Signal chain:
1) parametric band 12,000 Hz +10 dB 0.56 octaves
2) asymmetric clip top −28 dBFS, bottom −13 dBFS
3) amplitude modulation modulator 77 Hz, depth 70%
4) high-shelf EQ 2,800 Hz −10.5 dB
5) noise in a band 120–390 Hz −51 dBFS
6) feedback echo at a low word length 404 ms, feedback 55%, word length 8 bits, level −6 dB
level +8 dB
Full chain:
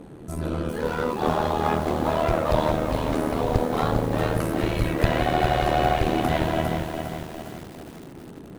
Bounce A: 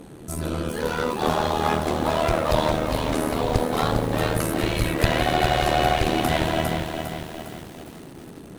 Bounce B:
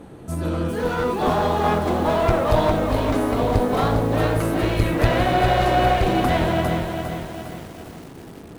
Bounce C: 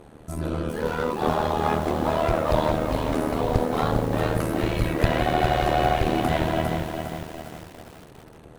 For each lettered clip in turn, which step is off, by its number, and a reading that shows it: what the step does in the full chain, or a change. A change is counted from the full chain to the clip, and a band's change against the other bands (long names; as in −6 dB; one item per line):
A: 4, 8 kHz band +7.0 dB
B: 3, change in crest factor −2.5 dB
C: 5, change in momentary loudness spread −4 LU